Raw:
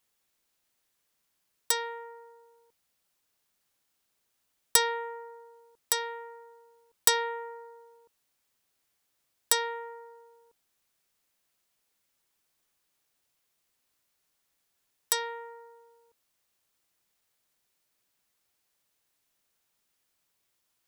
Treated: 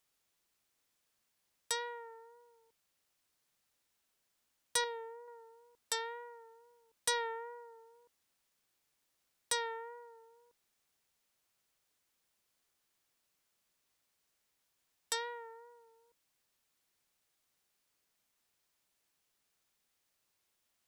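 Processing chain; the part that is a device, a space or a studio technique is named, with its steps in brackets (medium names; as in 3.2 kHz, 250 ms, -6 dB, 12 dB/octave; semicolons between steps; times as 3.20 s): 4.84–5.28 s: peaking EQ 1.6 kHz -10 dB 1.9 oct; compact cassette (saturation -17.5 dBFS, distortion -10 dB; low-pass 9.8 kHz 12 dB/octave; wow and flutter; white noise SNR 35 dB); trim -5.5 dB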